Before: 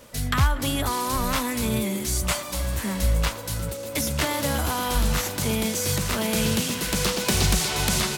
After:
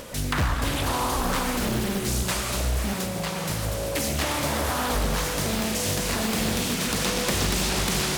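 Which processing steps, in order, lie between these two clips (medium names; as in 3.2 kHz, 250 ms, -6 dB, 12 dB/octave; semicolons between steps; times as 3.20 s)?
upward compressor, threshold -34 dBFS; Schroeder reverb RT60 2.6 s, combs from 33 ms, DRR 1 dB; compression 2:1, threshold -25 dBFS, peak gain reduction 6.5 dB; 2.93–3.50 s: high-pass 100 Hz 24 dB/octave; loudspeaker Doppler distortion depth 0.99 ms; trim +1 dB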